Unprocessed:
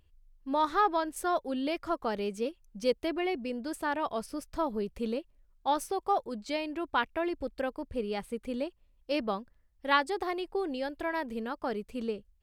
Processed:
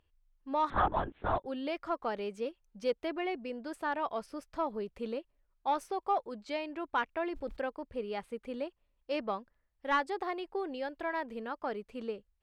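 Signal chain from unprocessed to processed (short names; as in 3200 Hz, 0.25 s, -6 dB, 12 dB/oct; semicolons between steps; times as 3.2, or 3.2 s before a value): overdrive pedal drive 11 dB, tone 1700 Hz, clips at -11 dBFS; 0.7–1.46 LPC vocoder at 8 kHz whisper; 7.06–7.65 sustainer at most 130 dB/s; gain -5 dB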